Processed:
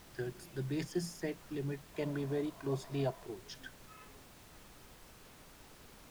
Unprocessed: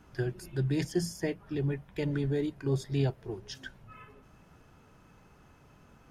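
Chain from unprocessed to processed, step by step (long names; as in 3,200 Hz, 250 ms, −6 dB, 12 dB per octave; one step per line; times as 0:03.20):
high-pass filter 140 Hz 24 dB per octave
background noise pink −51 dBFS
0:01.94–0:03.26: hollow resonant body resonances 670/1,000 Hz, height 12 dB, ringing for 25 ms
level −6 dB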